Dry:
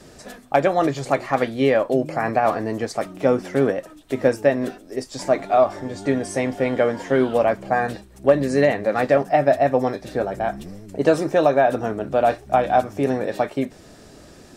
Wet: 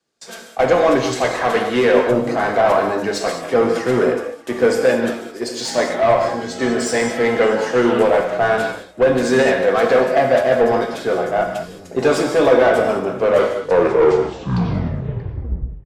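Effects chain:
turntable brake at the end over 2.50 s
noise gate with hold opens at −33 dBFS
high-shelf EQ 4,100 Hz +12 dB
notch filter 620 Hz, Q 12
mid-hump overdrive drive 21 dB, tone 1,600 Hz, clips at −3 dBFS
on a send: single-tap delay 581 ms −20.5 dB
on the sum: reverb whose tail is shaped and stops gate 220 ms flat, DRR 2.5 dB
wrong playback speed 48 kHz file played as 44.1 kHz
multiband upward and downward expander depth 40%
level −3 dB

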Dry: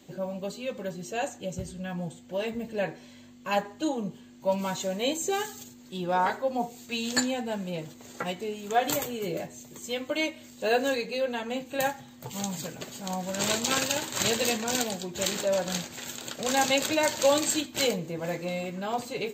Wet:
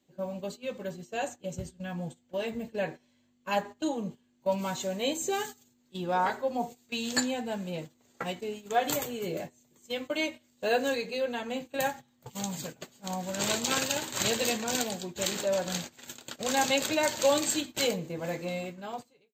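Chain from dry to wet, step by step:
fade-out on the ending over 0.78 s
noise gate −37 dBFS, range −16 dB
level −2 dB

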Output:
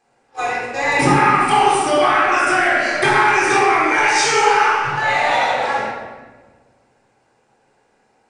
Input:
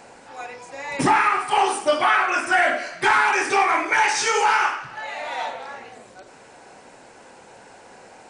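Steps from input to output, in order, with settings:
noise gate −37 dBFS, range −30 dB
downward compressor 6 to 1, threshold −28 dBFS, peak gain reduction 14 dB
rectangular room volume 1,200 cubic metres, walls mixed, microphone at 3.8 metres
level +8 dB

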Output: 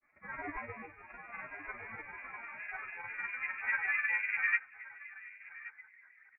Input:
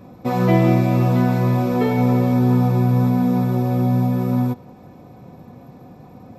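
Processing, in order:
notch filter 820 Hz, Q 21
comb filter 2.5 ms, depth 76%
four-comb reverb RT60 0.36 s, combs from 25 ms, DRR −1 dB
brickwall limiter −14.5 dBFS, peak gain reduction 14 dB
band-pass filter sweep 2,000 Hz → 840 Hz, 0:01.53–0:04.20
granular cloud, pitch spread up and down by 7 semitones
single-tap delay 1,124 ms −7.5 dB
voice inversion scrambler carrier 2,600 Hz
expander for the loud parts 2.5 to 1, over −46 dBFS
level +7 dB

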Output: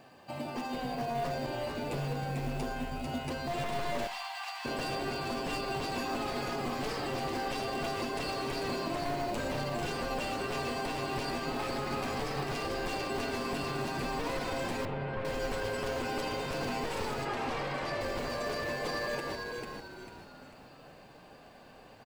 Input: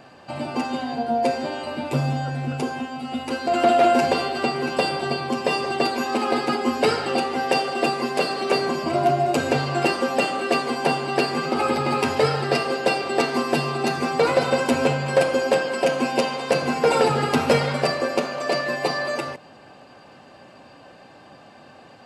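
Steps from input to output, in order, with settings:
wavefolder on the positive side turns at −20 dBFS
notch filter 1,400 Hz, Q 9.1
brickwall limiter −19 dBFS, peak gain reduction 10.5 dB
echo with shifted repeats 445 ms, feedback 39%, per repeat −110 Hz, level −4 dB
log-companded quantiser 6 bits
0:04.07–0:04.65: Chebyshev high-pass with heavy ripple 710 Hz, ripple 3 dB
0:14.85–0:15.25: high-frequency loss of the air 430 metres
0:17.25–0:18.01: mid-hump overdrive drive 10 dB, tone 1,900 Hz, clips at −15 dBFS
four-comb reverb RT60 0.39 s, combs from 33 ms, DRR 18.5 dB
level −8.5 dB

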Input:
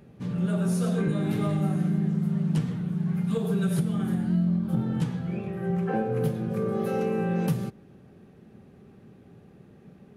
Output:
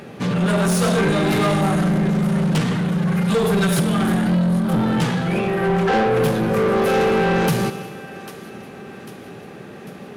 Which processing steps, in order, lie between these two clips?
feedback echo with a high-pass in the loop 797 ms, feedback 57%, high-pass 1,200 Hz, level −19.5 dB
four-comb reverb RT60 1.5 s, combs from 33 ms, DRR 14.5 dB
mid-hump overdrive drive 24 dB, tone 7,400 Hz, clips at −15.5 dBFS
level +5 dB

